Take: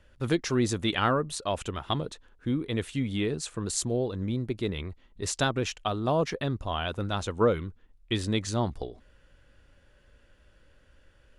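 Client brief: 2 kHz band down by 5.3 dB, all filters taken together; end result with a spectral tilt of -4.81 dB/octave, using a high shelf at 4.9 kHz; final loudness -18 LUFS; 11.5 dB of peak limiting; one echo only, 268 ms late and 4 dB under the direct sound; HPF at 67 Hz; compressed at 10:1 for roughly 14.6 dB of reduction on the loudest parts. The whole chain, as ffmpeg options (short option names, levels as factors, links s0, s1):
-af "highpass=67,equalizer=f=2000:t=o:g=-8.5,highshelf=f=4900:g=5,acompressor=threshold=0.0224:ratio=10,alimiter=level_in=2:limit=0.0631:level=0:latency=1,volume=0.501,aecho=1:1:268:0.631,volume=11.9"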